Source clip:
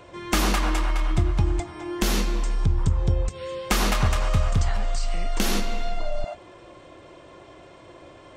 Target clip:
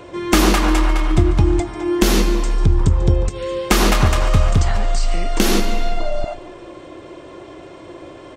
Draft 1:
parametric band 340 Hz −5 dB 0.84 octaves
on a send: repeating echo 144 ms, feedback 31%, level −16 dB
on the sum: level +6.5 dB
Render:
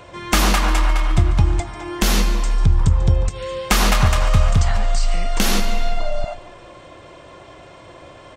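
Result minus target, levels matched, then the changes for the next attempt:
250 Hz band −5.0 dB
change: parametric band 340 Hz +6.5 dB 0.84 octaves

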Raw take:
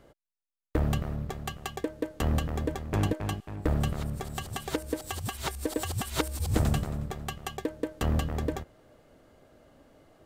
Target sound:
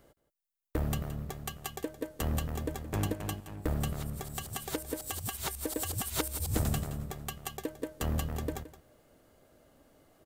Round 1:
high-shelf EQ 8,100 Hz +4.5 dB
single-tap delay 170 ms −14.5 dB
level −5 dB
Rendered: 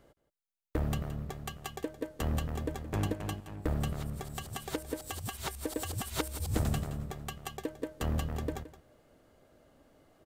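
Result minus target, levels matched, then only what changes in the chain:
8,000 Hz band −4.0 dB
change: high-shelf EQ 8,100 Hz +14 dB

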